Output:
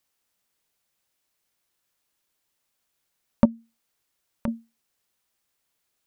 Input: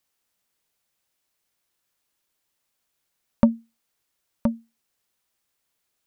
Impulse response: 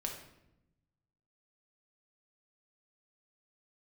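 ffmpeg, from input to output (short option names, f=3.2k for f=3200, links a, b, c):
-filter_complex "[0:a]asettb=1/sr,asplit=3[a][b][c];[a]atrim=end=3.454[d];[b]atrim=start=3.45:end=4.48,asetpts=PTS-STARTPTS,afade=t=in:d=0.004:c=qsin,afade=t=out:st=1.026:d=0.004:c=qsin,acompressor=threshold=-28dB:ratio=6[e];[c]atrim=start=4.476[f];[d][e]acrossfade=d=0.004:c1=hsin:c2=qsin[g];[g][f]acrossfade=d=0.004:c1=qsin:c2=hsin"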